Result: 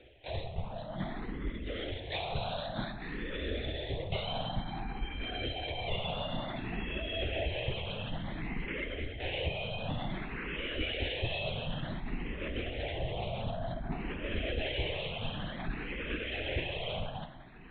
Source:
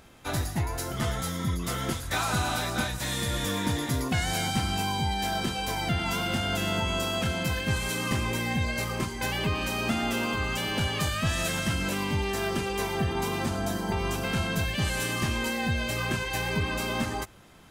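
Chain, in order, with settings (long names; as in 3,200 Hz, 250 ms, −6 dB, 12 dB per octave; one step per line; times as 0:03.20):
reversed playback
upward compression, threshold −36 dBFS
reversed playback
phaser with its sweep stopped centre 310 Hz, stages 6
spring reverb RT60 2.3 s, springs 39/45 ms, chirp 75 ms, DRR 8.5 dB
linear-prediction vocoder at 8 kHz whisper
frequency shifter mixed with the dry sound +0.55 Hz
level −1 dB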